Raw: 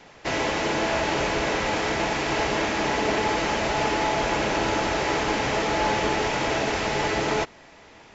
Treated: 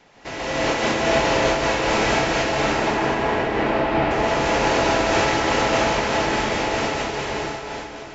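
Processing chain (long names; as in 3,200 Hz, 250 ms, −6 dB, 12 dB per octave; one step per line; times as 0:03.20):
fade-out on the ending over 2.54 s
0:02.44–0:04.11: high-frequency loss of the air 370 metres
dense smooth reverb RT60 3.6 s, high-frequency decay 0.95×, pre-delay 115 ms, DRR −9.5 dB
amplitude modulation by smooth noise, depth 50%
level −3 dB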